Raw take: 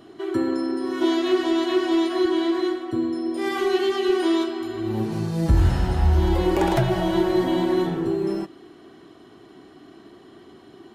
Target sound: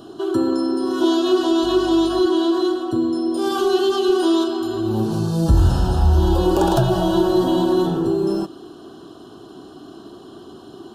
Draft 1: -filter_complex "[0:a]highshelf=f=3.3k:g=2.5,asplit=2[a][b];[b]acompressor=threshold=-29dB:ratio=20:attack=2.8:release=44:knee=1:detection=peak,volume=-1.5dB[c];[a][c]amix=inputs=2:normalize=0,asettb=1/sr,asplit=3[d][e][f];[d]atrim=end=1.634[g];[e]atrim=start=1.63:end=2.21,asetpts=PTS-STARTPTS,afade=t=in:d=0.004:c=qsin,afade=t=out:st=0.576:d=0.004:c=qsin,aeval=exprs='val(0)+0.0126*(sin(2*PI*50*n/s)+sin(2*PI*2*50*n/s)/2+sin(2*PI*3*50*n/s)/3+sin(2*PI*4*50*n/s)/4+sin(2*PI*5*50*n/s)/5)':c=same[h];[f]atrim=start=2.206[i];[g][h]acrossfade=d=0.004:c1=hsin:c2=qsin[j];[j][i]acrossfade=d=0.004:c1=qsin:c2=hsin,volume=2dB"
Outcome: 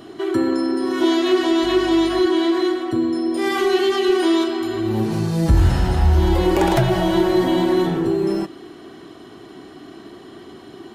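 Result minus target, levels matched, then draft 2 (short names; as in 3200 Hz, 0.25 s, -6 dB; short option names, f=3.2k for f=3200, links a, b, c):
2000 Hz band +6.5 dB
-filter_complex "[0:a]asuperstop=centerf=2100:order=4:qfactor=1.5,highshelf=f=3.3k:g=2.5,asplit=2[a][b];[b]acompressor=threshold=-29dB:ratio=20:attack=2.8:release=44:knee=1:detection=peak,volume=-1.5dB[c];[a][c]amix=inputs=2:normalize=0,asettb=1/sr,asplit=3[d][e][f];[d]atrim=end=1.634[g];[e]atrim=start=1.63:end=2.21,asetpts=PTS-STARTPTS,afade=t=in:d=0.004:c=qsin,afade=t=out:st=0.576:d=0.004:c=qsin,aeval=exprs='val(0)+0.0126*(sin(2*PI*50*n/s)+sin(2*PI*2*50*n/s)/2+sin(2*PI*3*50*n/s)/3+sin(2*PI*4*50*n/s)/4+sin(2*PI*5*50*n/s)/5)':c=same[h];[f]atrim=start=2.206[i];[g][h]acrossfade=d=0.004:c1=hsin:c2=qsin[j];[j][i]acrossfade=d=0.004:c1=qsin:c2=hsin,volume=2dB"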